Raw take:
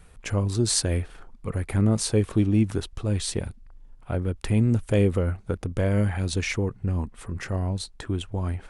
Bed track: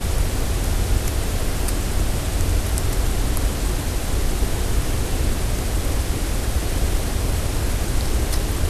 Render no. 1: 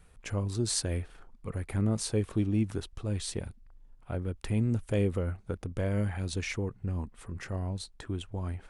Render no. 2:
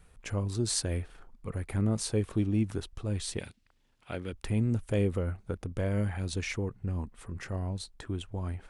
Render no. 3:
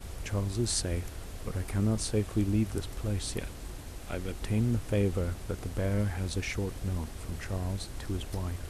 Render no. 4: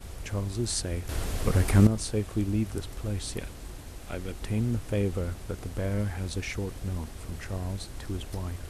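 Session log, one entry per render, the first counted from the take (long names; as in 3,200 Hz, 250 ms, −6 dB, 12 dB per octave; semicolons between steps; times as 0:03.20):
level −7 dB
0:03.38–0:04.33: meter weighting curve D
mix in bed track −19.5 dB
0:01.09–0:01.87: clip gain +10.5 dB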